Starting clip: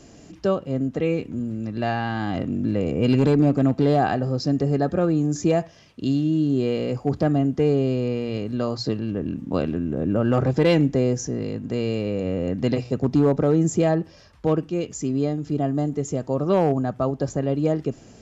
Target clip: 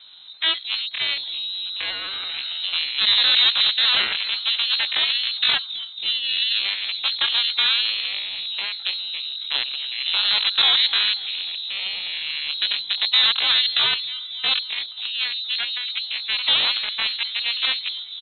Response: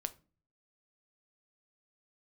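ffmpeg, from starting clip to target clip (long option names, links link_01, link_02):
-filter_complex "[0:a]asplit=2[link_01][link_02];[link_02]aecho=0:1:266|532|798|1064|1330|1596:0.224|0.13|0.0753|0.0437|0.0253|0.0147[link_03];[link_01][link_03]amix=inputs=2:normalize=0,aeval=exprs='0.422*(cos(1*acos(clip(val(0)/0.422,-1,1)))-cos(1*PI/2))+0.0473*(cos(3*acos(clip(val(0)/0.422,-1,1)))-cos(3*PI/2))+0.0473*(cos(5*acos(clip(val(0)/0.422,-1,1)))-cos(5*PI/2))+0.15*(cos(7*acos(clip(val(0)/0.422,-1,1)))-cos(7*PI/2))+0.0106*(cos(8*acos(clip(val(0)/0.422,-1,1)))-cos(8*PI/2))':channel_layout=same,lowpass=frequency=2100:width_type=q:width=0.5098,lowpass=frequency=2100:width_type=q:width=0.6013,lowpass=frequency=2100:width_type=q:width=0.9,lowpass=frequency=2100:width_type=q:width=2.563,afreqshift=-2500,asetrate=74167,aresample=44100,atempo=0.594604"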